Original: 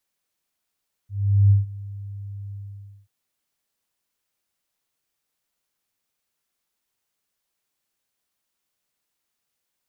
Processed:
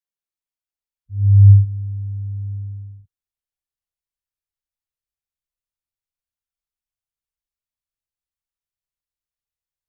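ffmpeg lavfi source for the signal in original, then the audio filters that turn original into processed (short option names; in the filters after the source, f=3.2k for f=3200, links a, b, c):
-f lavfi -i "aevalsrc='0.299*sin(2*PI*100*t)':d=1.985:s=44100,afade=t=in:d=0.415,afade=t=out:st=0.415:d=0.15:silence=0.0891,afade=t=out:st=1.44:d=0.545"
-af "asubboost=boost=11:cutoff=79,afwtdn=0.0251,adynamicequalizer=threshold=0.0562:dfrequency=130:dqfactor=1.3:tfrequency=130:tqfactor=1.3:attack=5:release=100:ratio=0.375:range=2.5:mode=boostabove:tftype=bell"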